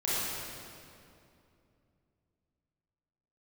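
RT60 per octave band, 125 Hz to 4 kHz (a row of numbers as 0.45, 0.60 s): 3.7, 3.4, 2.8, 2.4, 2.1, 1.9 s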